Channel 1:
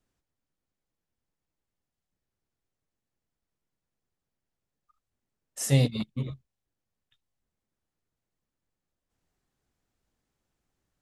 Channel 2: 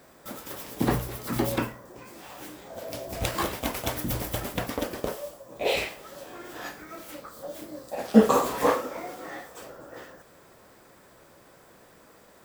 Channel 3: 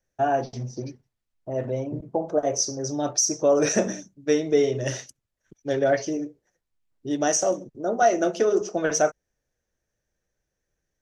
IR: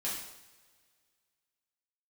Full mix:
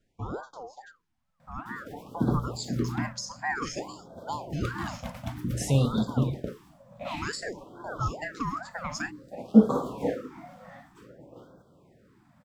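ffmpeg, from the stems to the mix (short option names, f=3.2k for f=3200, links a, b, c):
-filter_complex "[0:a]volume=0.5dB,asplit=2[a][b];[b]volume=-12.5dB[c];[1:a]equalizer=f=150:w=0.5:g=13,adelay=1400,volume=-10dB[d];[2:a]highshelf=f=7.5k:g=11.5,aeval=exprs='val(0)*sin(2*PI*960*n/s+960*0.4/2.3*sin(2*PI*2.3*n/s))':c=same,volume=-13.5dB[e];[a][e]amix=inputs=2:normalize=0,acontrast=61,alimiter=limit=-17dB:level=0:latency=1:release=303,volume=0dB[f];[3:a]atrim=start_sample=2205[g];[c][g]afir=irnorm=-1:irlink=0[h];[d][f][h]amix=inputs=3:normalize=0,aemphasis=mode=reproduction:type=50kf,afftfilt=real='re*(1-between(b*sr/1024,350*pow(2300/350,0.5+0.5*sin(2*PI*0.54*pts/sr))/1.41,350*pow(2300/350,0.5+0.5*sin(2*PI*0.54*pts/sr))*1.41))':imag='im*(1-between(b*sr/1024,350*pow(2300/350,0.5+0.5*sin(2*PI*0.54*pts/sr))/1.41,350*pow(2300/350,0.5+0.5*sin(2*PI*0.54*pts/sr))*1.41))':win_size=1024:overlap=0.75"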